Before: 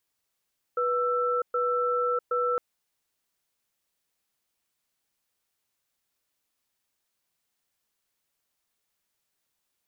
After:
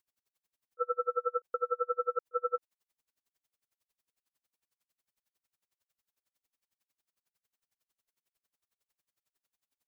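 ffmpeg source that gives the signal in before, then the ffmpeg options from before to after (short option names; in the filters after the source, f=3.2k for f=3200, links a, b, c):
-f lavfi -i "aevalsrc='0.0501*(sin(2*PI*490*t)+sin(2*PI*1330*t))*clip(min(mod(t,0.77),0.65-mod(t,0.77))/0.005,0,1)':d=1.81:s=44100"
-af "aeval=exprs='val(0)*pow(10,-38*(0.5-0.5*cos(2*PI*11*n/s))/20)':c=same"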